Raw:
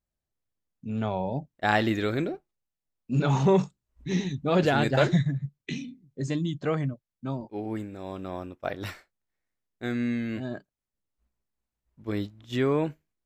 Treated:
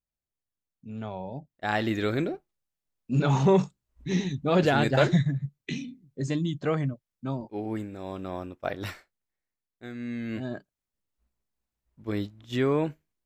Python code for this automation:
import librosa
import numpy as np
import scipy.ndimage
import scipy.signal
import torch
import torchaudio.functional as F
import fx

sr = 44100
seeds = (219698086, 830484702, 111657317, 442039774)

y = fx.gain(x, sr, db=fx.line((1.52, -7.0), (2.07, 0.5), (8.9, 0.5), (9.93, -10.0), (10.36, 0.0)))